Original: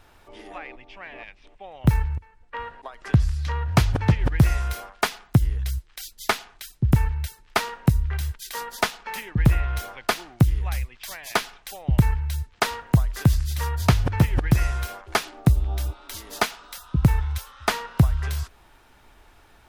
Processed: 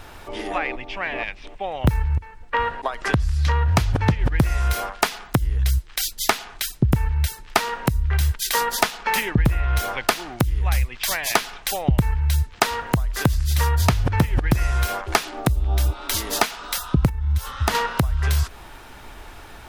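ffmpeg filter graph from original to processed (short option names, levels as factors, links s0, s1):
-filter_complex "[0:a]asettb=1/sr,asplit=3[s0][s1][s2];[s0]atrim=end=17.094[s3];[s1]atrim=start=17.09:end=17.75,asetpts=PTS-STARTPTS,afade=t=in:d=0.004:c=qsin,afade=t=out:st=0.656:d=0.004:c=qsin,equalizer=f=86:w=0.52:g=11.5,bandreject=f=2400:w=24,acompressor=threshold=0.0398:ratio=4:attack=3.2:release=140:knee=1:detection=peak[s4];[s2]atrim=start=17.746[s5];[s3][s4]acrossfade=d=0.004:c1=hsin:c2=qsin[s6];[s6][s5]acrossfade=d=0.004:c1=qsin:c2=hsin,acompressor=threshold=0.0355:ratio=6,alimiter=level_in=5.01:limit=0.891:release=50:level=0:latency=1,volume=0.891"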